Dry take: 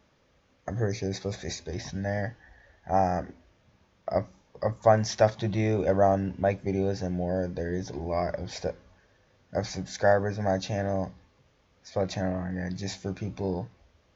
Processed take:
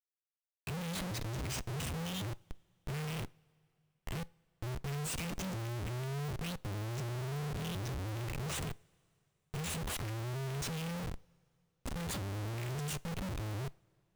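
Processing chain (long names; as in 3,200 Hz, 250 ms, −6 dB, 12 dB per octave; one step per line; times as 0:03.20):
pitch shifter swept by a sawtooth +11 semitones, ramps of 1,107 ms
elliptic band-stop filter 140–2,400 Hz, stop band 60 dB
high-shelf EQ 2,400 Hz −6.5 dB
comparator with hysteresis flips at −48.5 dBFS
coupled-rooms reverb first 0.34 s, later 3 s, from −18 dB, DRR 19.5 dB
level +2 dB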